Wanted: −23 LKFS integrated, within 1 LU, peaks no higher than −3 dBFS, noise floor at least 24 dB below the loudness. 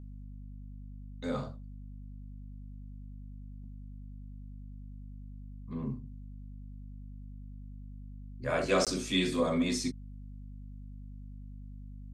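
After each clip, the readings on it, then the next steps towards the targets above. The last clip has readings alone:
number of dropouts 1; longest dropout 17 ms; mains hum 50 Hz; hum harmonics up to 250 Hz; level of the hum −42 dBFS; integrated loudness −32.5 LKFS; sample peak −15.0 dBFS; target loudness −23.0 LKFS
→ repair the gap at 0:08.85, 17 ms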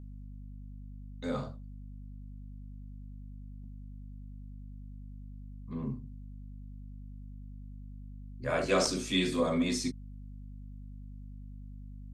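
number of dropouts 0; mains hum 50 Hz; hum harmonics up to 250 Hz; level of the hum −42 dBFS
→ hum removal 50 Hz, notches 5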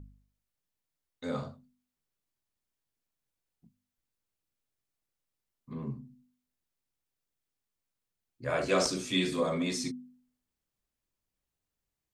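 mains hum none found; integrated loudness −32.0 LKFS; sample peak −15.0 dBFS; target loudness −23.0 LKFS
→ level +9 dB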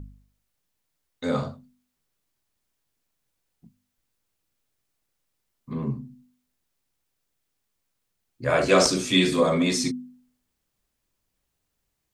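integrated loudness −23.0 LKFS; sample peak −6.0 dBFS; background noise floor −79 dBFS

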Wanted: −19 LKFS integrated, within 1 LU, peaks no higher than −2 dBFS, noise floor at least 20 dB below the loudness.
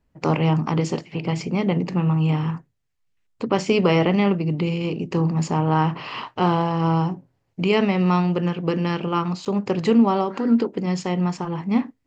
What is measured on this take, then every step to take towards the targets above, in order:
number of dropouts 1; longest dropout 8.0 ms; integrated loudness −22.0 LKFS; sample peak −6.0 dBFS; target loudness −19.0 LKFS
→ repair the gap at 0:09.45, 8 ms
level +3 dB

